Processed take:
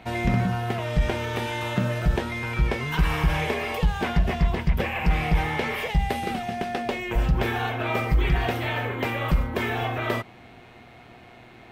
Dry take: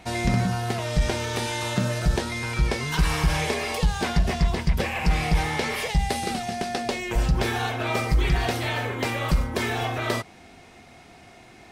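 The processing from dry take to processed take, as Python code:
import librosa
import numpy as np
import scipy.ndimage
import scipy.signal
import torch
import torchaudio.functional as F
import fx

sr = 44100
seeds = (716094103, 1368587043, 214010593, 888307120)

y = fx.band_shelf(x, sr, hz=6600.0, db=-11.0, octaves=1.7)
y = fx.dmg_buzz(y, sr, base_hz=120.0, harmonics=37, level_db=-54.0, tilt_db=-4, odd_only=False)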